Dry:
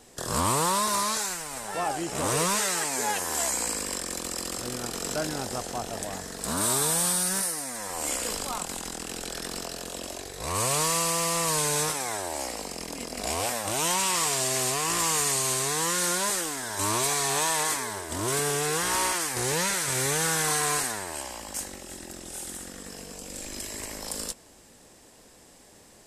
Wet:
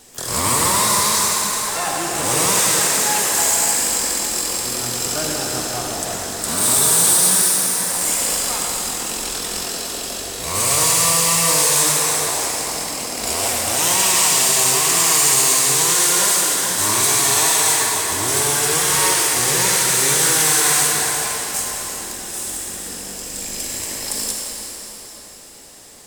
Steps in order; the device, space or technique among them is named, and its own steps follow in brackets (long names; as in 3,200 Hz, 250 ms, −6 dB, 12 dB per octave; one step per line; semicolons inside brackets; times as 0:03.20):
shimmer-style reverb (pitch-shifted copies added +12 semitones −12 dB; convolution reverb RT60 4.5 s, pre-delay 41 ms, DRR −2 dB)
high-shelf EQ 2,600 Hz +8 dB
level +1.5 dB